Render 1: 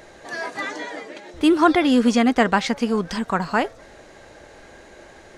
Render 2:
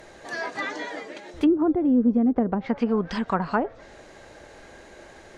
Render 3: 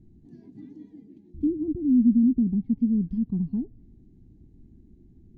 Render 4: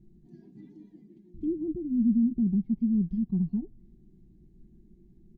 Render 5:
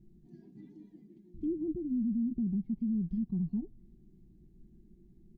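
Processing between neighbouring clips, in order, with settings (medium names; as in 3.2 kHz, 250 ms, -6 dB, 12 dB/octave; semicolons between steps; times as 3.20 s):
low-pass that closes with the level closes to 380 Hz, closed at -13.5 dBFS; trim -1.5 dB
inverse Chebyshev low-pass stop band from 510 Hz, stop band 40 dB; trim +3.5 dB
comb 5.5 ms, depth 77%; trim -5 dB
peak limiter -24 dBFS, peak gain reduction 7.5 dB; trim -2.5 dB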